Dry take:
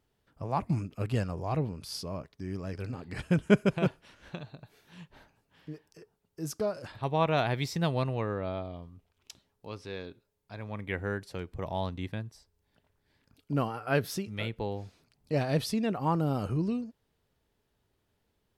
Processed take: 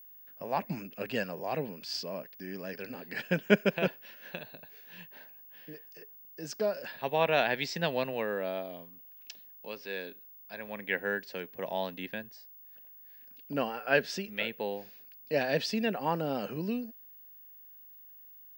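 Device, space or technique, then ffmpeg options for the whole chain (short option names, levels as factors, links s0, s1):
old television with a line whistle: -af "highpass=f=200:w=0.5412,highpass=f=200:w=1.3066,equalizer=f=320:t=q:w=4:g=-6,equalizer=f=540:t=q:w=4:g=4,equalizer=f=1200:t=q:w=4:g=-7,equalizer=f=1700:t=q:w=4:g=9,equalizer=f=2700:t=q:w=4:g=7,equalizer=f=4800:t=q:w=4:g=4,lowpass=f=6900:w=0.5412,lowpass=f=6900:w=1.3066,aeval=exprs='val(0)+0.00316*sin(2*PI*15625*n/s)':c=same"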